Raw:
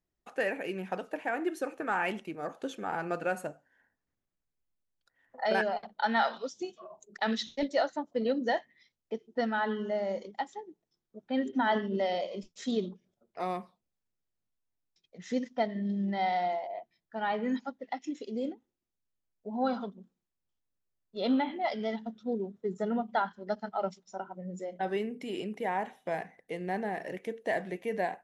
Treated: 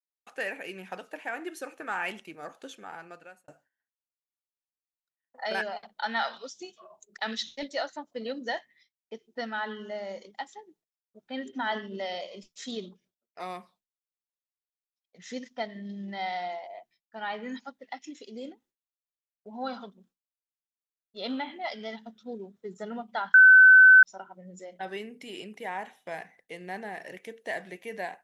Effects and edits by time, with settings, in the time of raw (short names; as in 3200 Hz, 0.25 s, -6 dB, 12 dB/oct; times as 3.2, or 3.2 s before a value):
2.44–3.48 fade out
23.34–24.03 bleep 1520 Hz -10 dBFS
whole clip: expander -55 dBFS; tilt shelf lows -5.5 dB, about 1100 Hz; gain -2 dB